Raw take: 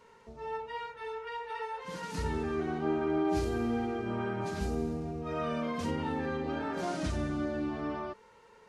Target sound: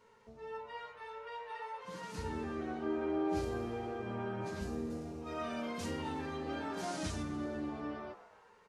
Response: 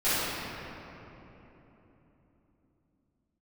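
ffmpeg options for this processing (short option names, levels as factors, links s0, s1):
-filter_complex "[0:a]asettb=1/sr,asplit=3[s0][s1][s2];[s0]atrim=end=4.904[s3];[s1]atrim=start=4.9:end=7.23,asetpts=PTS-STARTPTS,afade=t=in:d=0.004:c=qsin,afade=t=out:st=2.326:d=0.004:c=qsin,highshelf=f=3800:g=10[s4];[s2]atrim=start=7.226[s5];[s3][s4]acrossfade=d=0.004:c1=hsin:c2=qsin[s6];[s6][s5]acrossfade=d=0.004:c1=qsin:c2=hsin,asplit=7[s7][s8][s9][s10][s11][s12][s13];[s8]adelay=122,afreqshift=130,volume=0.141[s14];[s9]adelay=244,afreqshift=260,volume=0.0861[s15];[s10]adelay=366,afreqshift=390,volume=0.0525[s16];[s11]adelay=488,afreqshift=520,volume=0.032[s17];[s12]adelay=610,afreqshift=650,volume=0.0195[s18];[s13]adelay=732,afreqshift=780,volume=0.0119[s19];[s7][s14][s15][s16][s17][s18][s19]amix=inputs=7:normalize=0,flanger=delay=9:depth=1.5:regen=-39:speed=0.4:shape=triangular,volume=0.794"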